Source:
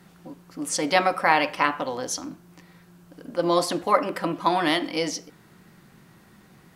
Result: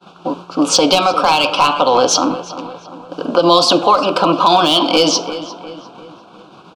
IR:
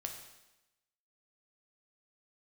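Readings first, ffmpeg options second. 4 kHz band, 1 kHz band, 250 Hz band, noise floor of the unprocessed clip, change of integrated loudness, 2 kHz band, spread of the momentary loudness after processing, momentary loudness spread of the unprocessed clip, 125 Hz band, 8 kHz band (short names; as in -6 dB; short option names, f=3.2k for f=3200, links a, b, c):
+17.0 dB, +11.0 dB, +11.5 dB, -54 dBFS, +11.5 dB, +4.0 dB, 18 LU, 12 LU, +9.0 dB, +12.0 dB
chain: -filter_complex "[0:a]agate=range=-33dB:threshold=-45dB:ratio=3:detection=peak,lowpass=4k,lowshelf=f=370:g=-5.5,acrossover=split=170|3000[a][b][c];[b]acompressor=threshold=-32dB:ratio=10[d];[a][d][c]amix=inputs=3:normalize=0,asplit=2[e][f];[f]highpass=f=720:p=1,volume=24dB,asoftclip=type=tanh:threshold=-3dB[g];[e][g]amix=inputs=2:normalize=0,lowpass=f=2.8k:p=1,volume=-6dB,aeval=exprs='clip(val(0),-1,0.266)':c=same,asuperstop=centerf=1900:order=4:qfactor=1.4,asplit=2[h][i];[i]adelay=350,lowpass=f=3k:p=1,volume=-14dB,asplit=2[j][k];[k]adelay=350,lowpass=f=3k:p=1,volume=0.49,asplit=2[l][m];[m]adelay=350,lowpass=f=3k:p=1,volume=0.49,asplit=2[n][o];[o]adelay=350,lowpass=f=3k:p=1,volume=0.49,asplit=2[p][q];[q]adelay=350,lowpass=f=3k:p=1,volume=0.49[r];[j][l][n][p][r]amix=inputs=5:normalize=0[s];[h][s]amix=inputs=2:normalize=0,alimiter=level_in=13dB:limit=-1dB:release=50:level=0:latency=1,volume=-1dB"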